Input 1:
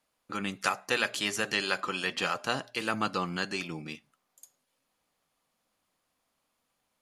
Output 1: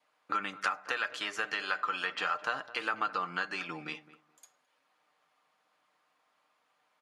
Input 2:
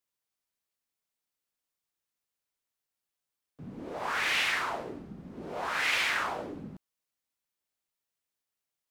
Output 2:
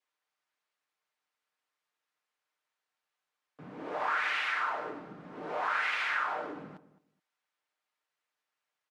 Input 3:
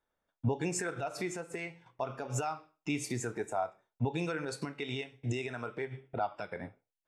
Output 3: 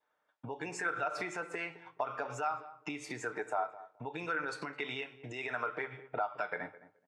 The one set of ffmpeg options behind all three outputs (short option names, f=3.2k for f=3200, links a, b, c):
-filter_complex "[0:a]adynamicequalizer=threshold=0.00562:dfrequency=1400:dqfactor=4.3:tfrequency=1400:tqfactor=4.3:attack=5:release=100:ratio=0.375:range=2.5:mode=boostabove:tftype=bell,aecho=1:1:6.6:0.37,acompressor=threshold=-36dB:ratio=6,bandpass=f=1.3k:t=q:w=0.78:csg=0,asplit=2[a][b];[b]adelay=213,lowpass=f=1.1k:p=1,volume=-15dB,asplit=2[c][d];[d]adelay=213,lowpass=f=1.1k:p=1,volume=0.2[e];[c][e]amix=inputs=2:normalize=0[f];[a][f]amix=inputs=2:normalize=0,volume=8.5dB"